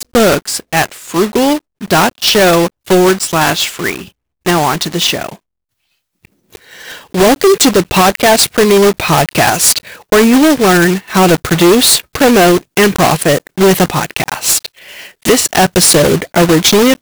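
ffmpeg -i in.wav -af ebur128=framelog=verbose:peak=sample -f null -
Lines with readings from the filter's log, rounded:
Integrated loudness:
  I:         -10.1 LUFS
  Threshold: -20.7 LUFS
Loudness range:
  LRA:         6.2 LU
  Threshold: -30.8 LUFS
  LRA low:   -15.1 LUFS
  LRA high:   -8.9 LUFS
Sample peak:
  Peak:       -3.9 dBFS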